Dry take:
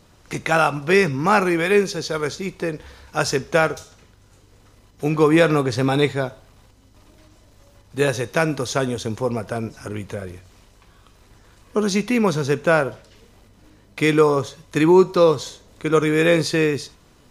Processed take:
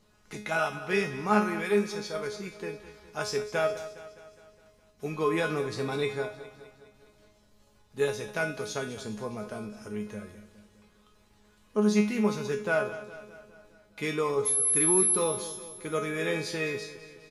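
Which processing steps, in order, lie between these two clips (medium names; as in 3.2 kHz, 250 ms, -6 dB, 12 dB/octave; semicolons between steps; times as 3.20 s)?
feedback comb 210 Hz, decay 0.39 s, harmonics all, mix 90%; 14.45–15.15 s: whistle 11 kHz -25 dBFS; feedback delay 206 ms, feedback 56%, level -14.5 dB; trim +2 dB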